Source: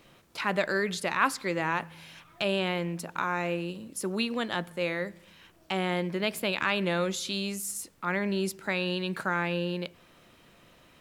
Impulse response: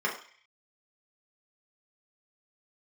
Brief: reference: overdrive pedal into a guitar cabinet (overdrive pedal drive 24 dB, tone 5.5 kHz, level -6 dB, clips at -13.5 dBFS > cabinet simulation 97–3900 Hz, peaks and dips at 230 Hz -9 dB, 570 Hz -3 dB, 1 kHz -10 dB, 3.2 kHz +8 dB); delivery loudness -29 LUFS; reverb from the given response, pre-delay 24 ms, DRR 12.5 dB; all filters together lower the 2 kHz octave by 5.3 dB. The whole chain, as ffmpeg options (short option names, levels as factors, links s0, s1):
-filter_complex "[0:a]equalizer=f=2000:t=o:g=-7.5,asplit=2[s0][s1];[1:a]atrim=start_sample=2205,adelay=24[s2];[s1][s2]afir=irnorm=-1:irlink=0,volume=0.075[s3];[s0][s3]amix=inputs=2:normalize=0,asplit=2[s4][s5];[s5]highpass=f=720:p=1,volume=15.8,asoftclip=type=tanh:threshold=0.211[s6];[s4][s6]amix=inputs=2:normalize=0,lowpass=f=5500:p=1,volume=0.501,highpass=97,equalizer=f=230:t=q:w=4:g=-9,equalizer=f=570:t=q:w=4:g=-3,equalizer=f=1000:t=q:w=4:g=-10,equalizer=f=3200:t=q:w=4:g=8,lowpass=f=3900:w=0.5412,lowpass=f=3900:w=1.3066,volume=0.631"